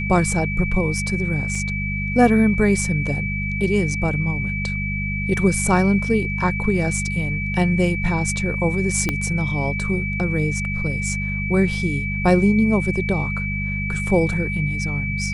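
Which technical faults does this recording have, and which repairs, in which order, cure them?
mains hum 50 Hz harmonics 4 −26 dBFS
whistle 2,300 Hz −26 dBFS
0:01.55: drop-out 3.3 ms
0:09.09: click −7 dBFS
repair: click removal
notch filter 2,300 Hz, Q 30
hum removal 50 Hz, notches 4
repair the gap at 0:01.55, 3.3 ms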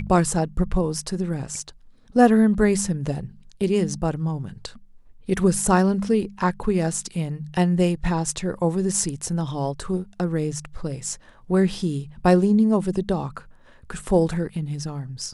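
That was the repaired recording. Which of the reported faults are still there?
0:09.09: click

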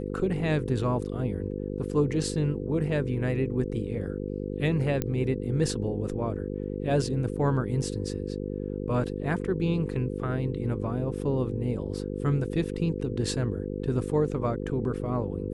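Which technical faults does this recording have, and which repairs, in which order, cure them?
mains buzz 50 Hz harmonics 10 −33 dBFS
0:05.02: click −14 dBFS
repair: click removal
hum removal 50 Hz, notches 10

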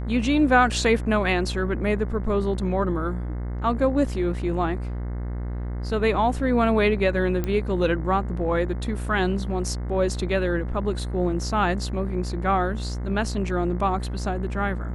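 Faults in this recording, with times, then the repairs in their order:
mains buzz 60 Hz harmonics 36 −29 dBFS
0:07.44: click −14 dBFS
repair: click removal
hum removal 60 Hz, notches 36

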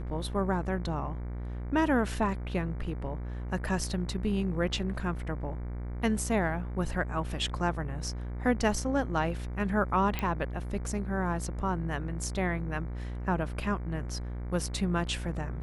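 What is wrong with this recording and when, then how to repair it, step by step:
mains buzz 60 Hz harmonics 39 −36 dBFS
0:10.19: click −16 dBFS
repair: click removal
hum removal 60 Hz, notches 39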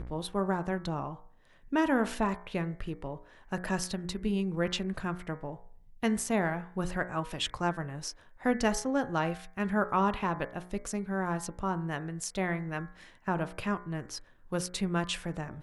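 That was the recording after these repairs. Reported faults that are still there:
none of them is left

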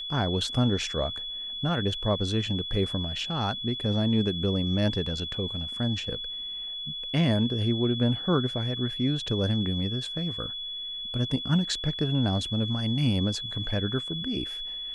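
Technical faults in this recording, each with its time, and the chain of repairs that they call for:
whistle 3,400 Hz −33 dBFS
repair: notch filter 3,400 Hz, Q 30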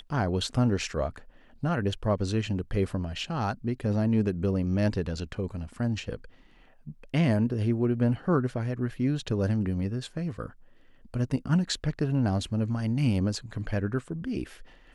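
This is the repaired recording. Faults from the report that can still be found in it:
none of them is left

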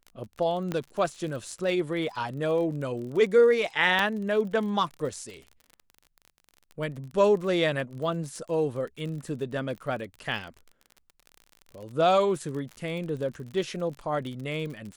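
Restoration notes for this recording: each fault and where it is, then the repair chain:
surface crackle 40 per second −36 dBFS
0:00.72: click −17 dBFS
0:03.99: drop-out 2.2 ms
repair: click removal
repair the gap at 0:03.99, 2.2 ms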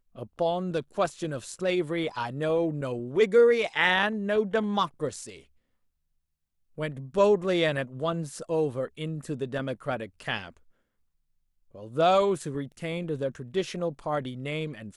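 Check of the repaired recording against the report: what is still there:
none of them is left

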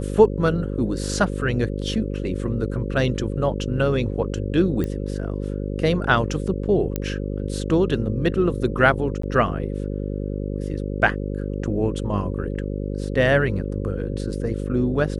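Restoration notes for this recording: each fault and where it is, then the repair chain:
mains buzz 50 Hz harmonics 11 −27 dBFS
0:04.84: click −15 dBFS
0:06.96: click −10 dBFS
0:09.22–0:09.23: drop-out 14 ms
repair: click removal
hum removal 50 Hz, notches 11
repair the gap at 0:09.22, 14 ms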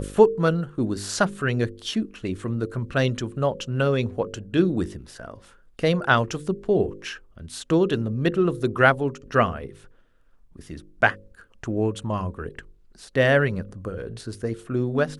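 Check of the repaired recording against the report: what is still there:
0:04.84: click
0:06.96: click

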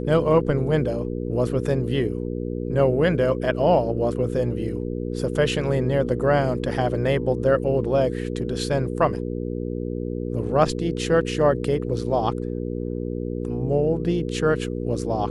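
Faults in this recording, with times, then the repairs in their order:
mains hum 60 Hz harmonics 8 −28 dBFS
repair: hum removal 60 Hz, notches 8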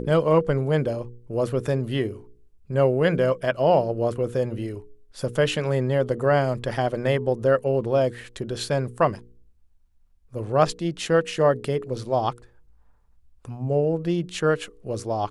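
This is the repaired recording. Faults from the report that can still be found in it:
none of them is left

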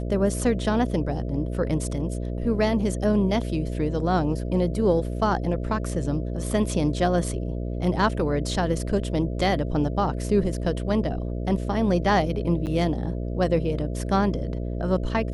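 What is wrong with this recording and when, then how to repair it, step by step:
mains buzz 60 Hz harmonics 11 −29 dBFS
0:12.66–0:12.67: drop-out 8.8 ms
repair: hum removal 60 Hz, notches 11
repair the gap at 0:12.66, 8.8 ms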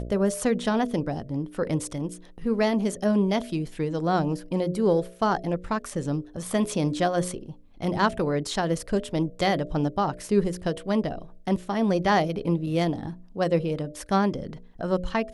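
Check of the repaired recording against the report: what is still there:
none of them is left

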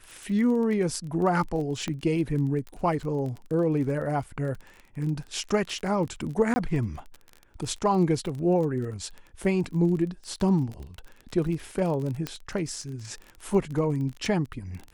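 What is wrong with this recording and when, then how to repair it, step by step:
surface crackle 23 per second −33 dBFS
0:01.88: click −18 dBFS
0:06.54–0:06.56: drop-out 20 ms
0:12.27: click −15 dBFS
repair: click removal
repair the gap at 0:06.54, 20 ms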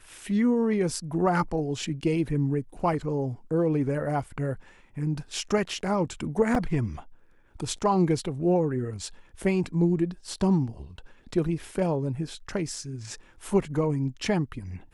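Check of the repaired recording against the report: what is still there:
none of them is left

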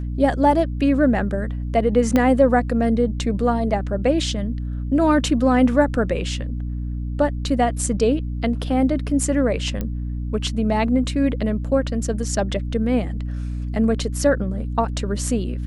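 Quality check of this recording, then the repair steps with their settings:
mains hum 60 Hz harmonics 5 −26 dBFS
0:02.16: click −6 dBFS
0:09.81: click −13 dBFS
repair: click removal
hum removal 60 Hz, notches 5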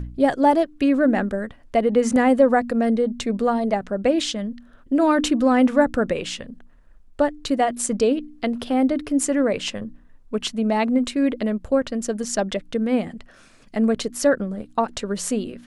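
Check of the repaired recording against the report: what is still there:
0:02.16: click
0:09.81: click

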